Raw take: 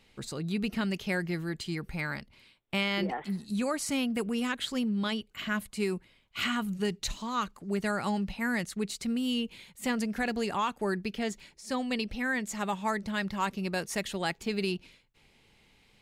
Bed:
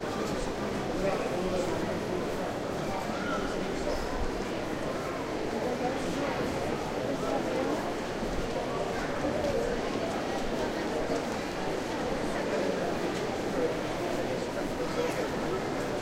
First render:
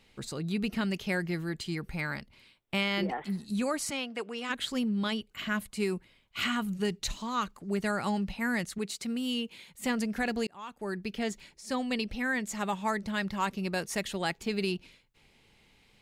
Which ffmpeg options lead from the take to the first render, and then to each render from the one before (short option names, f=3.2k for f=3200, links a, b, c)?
-filter_complex "[0:a]asplit=3[a][b][c];[a]afade=t=out:st=3.9:d=0.02[d];[b]highpass=450,lowpass=5.8k,afade=t=in:st=3.9:d=0.02,afade=t=out:st=4.49:d=0.02[e];[c]afade=t=in:st=4.49:d=0.02[f];[d][e][f]amix=inputs=3:normalize=0,asettb=1/sr,asplit=3[g][h][i];[g]atrim=end=8.784[j];[h]atrim=start=8.78:end=9.71,asetpts=PTS-STARTPTS,afade=t=in:d=0.004:c=qsin,afade=t=out:st=0.926:d=0.004:c=qsin,highpass=f=220:p=1[k];[i]atrim=start=9.706[l];[j][k]acrossfade=d=0.004:c1=hsin:c2=qsin[m];[m][l]acrossfade=d=0.004:c1=qsin:c2=hsin,asplit=2[n][o];[n]atrim=end=10.47,asetpts=PTS-STARTPTS,afade=t=out:st=10.466:d=0.004:c=hsin[p];[o]atrim=start=10.47,asetpts=PTS-STARTPTS,afade=t=in:d=0.74[q];[p][q]concat=n=2:v=0:a=1"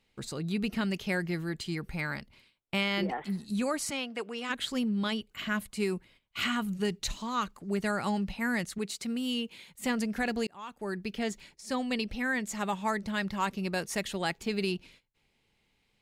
-af "agate=range=-10dB:threshold=-57dB:ratio=16:detection=peak"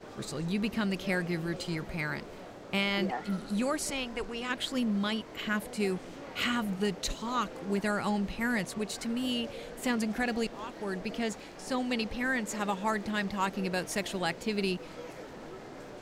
-filter_complex "[1:a]volume=-13.5dB[a];[0:a][a]amix=inputs=2:normalize=0"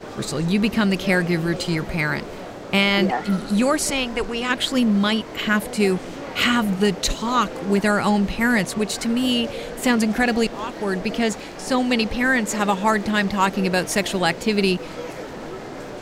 -af "volume=11.5dB"